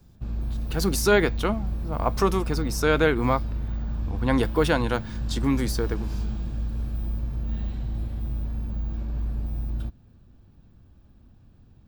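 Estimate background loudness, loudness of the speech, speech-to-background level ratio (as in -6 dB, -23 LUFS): -31.5 LUFS, -25.0 LUFS, 6.5 dB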